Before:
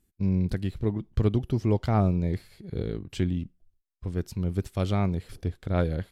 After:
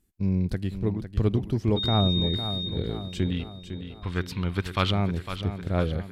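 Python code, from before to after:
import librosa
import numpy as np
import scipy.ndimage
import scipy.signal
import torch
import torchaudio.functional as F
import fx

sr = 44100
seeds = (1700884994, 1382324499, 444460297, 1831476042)

y = fx.dmg_tone(x, sr, hz=3700.0, level_db=-27.0, at=(1.76, 2.68), fade=0.02)
y = fx.band_shelf(y, sr, hz=2000.0, db=14.5, octaves=2.6, at=(3.3, 4.9), fade=0.02)
y = fx.echo_feedback(y, sr, ms=505, feedback_pct=52, wet_db=-10)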